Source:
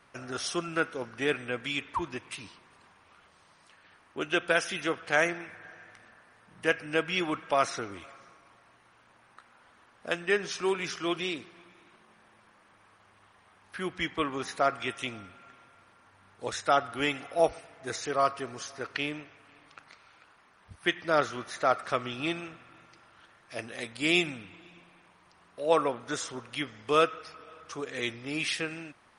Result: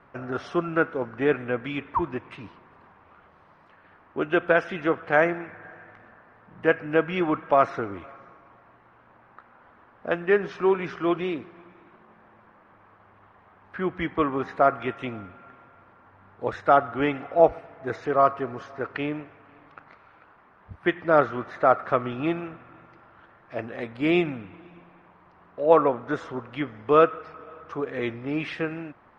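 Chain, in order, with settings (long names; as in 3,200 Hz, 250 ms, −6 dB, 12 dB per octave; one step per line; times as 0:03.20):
low-pass filter 1,400 Hz 12 dB per octave
level +7.5 dB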